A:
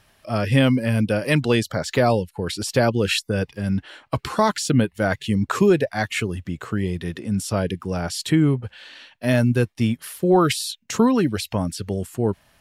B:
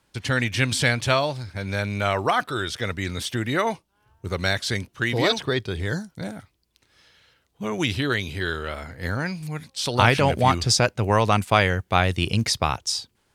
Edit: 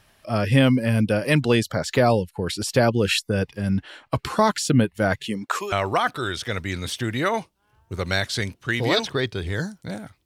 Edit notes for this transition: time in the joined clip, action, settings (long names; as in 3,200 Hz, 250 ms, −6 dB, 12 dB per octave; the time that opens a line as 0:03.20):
A
0:05.26–0:05.72: high-pass filter 220 Hz → 1,100 Hz
0:05.72: continue with B from 0:02.05